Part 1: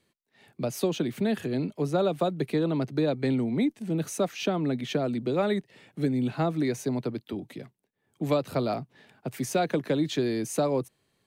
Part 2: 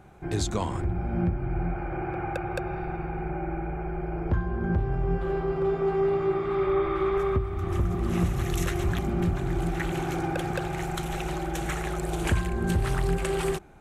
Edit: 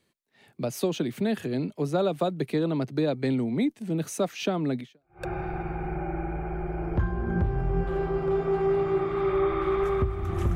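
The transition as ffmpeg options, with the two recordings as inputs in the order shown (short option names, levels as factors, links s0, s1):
-filter_complex "[0:a]apad=whole_dur=10.55,atrim=end=10.55,atrim=end=5.26,asetpts=PTS-STARTPTS[s0];[1:a]atrim=start=2.14:end=7.89,asetpts=PTS-STARTPTS[s1];[s0][s1]acrossfade=d=0.46:c1=exp:c2=exp"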